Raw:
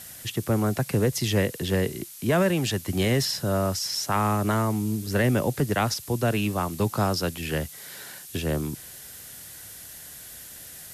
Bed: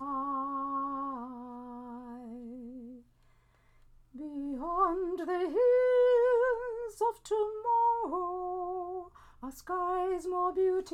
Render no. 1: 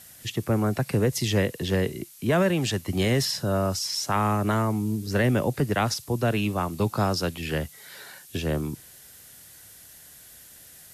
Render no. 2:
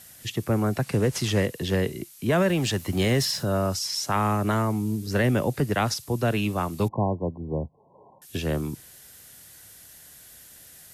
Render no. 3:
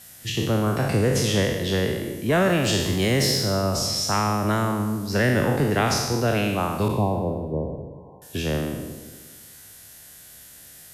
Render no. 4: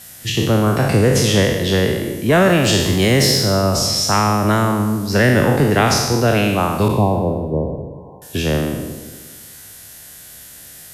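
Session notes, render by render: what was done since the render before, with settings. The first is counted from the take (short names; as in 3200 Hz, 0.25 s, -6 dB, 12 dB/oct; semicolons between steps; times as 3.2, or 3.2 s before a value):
noise print and reduce 6 dB
0.83–1.47 CVSD 64 kbps; 2.49–3.45 G.711 law mismatch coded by mu; 6.88–8.22 brick-wall FIR low-pass 1100 Hz
spectral trails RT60 1.14 s; dark delay 0.175 s, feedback 44%, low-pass 680 Hz, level -11 dB
gain +7 dB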